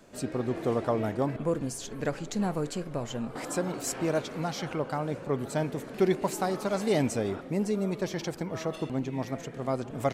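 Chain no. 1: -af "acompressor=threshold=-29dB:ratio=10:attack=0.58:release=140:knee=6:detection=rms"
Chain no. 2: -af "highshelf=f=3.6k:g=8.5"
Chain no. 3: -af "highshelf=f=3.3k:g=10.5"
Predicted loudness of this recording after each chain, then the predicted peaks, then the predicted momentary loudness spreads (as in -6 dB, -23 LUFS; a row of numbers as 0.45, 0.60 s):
-37.5, -30.0, -30.0 LUFS; -26.0, -13.0, -12.5 dBFS; 3, 7, 7 LU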